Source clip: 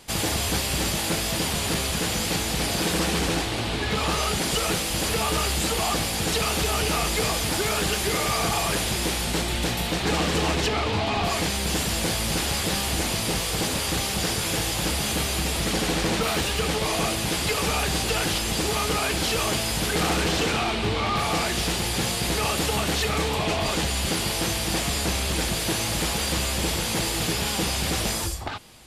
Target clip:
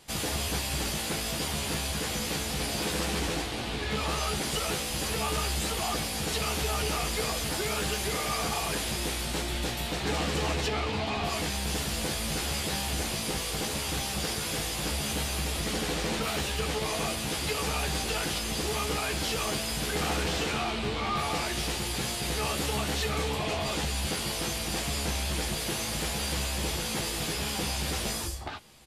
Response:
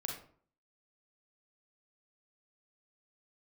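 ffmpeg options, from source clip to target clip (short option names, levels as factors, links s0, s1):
-filter_complex "[0:a]asplit=2[s0][s1];[s1]adelay=14,volume=0.531[s2];[s0][s2]amix=inputs=2:normalize=0,volume=0.447"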